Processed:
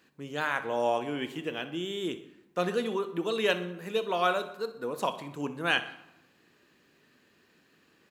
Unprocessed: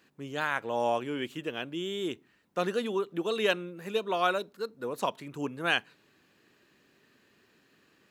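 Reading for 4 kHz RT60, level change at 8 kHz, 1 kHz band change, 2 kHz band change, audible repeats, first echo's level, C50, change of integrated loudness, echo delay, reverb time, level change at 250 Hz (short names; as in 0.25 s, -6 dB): 0.55 s, +0.5 dB, +0.5 dB, +0.5 dB, 2, -16.0 dB, 12.0 dB, +0.5 dB, 62 ms, 0.95 s, +0.5 dB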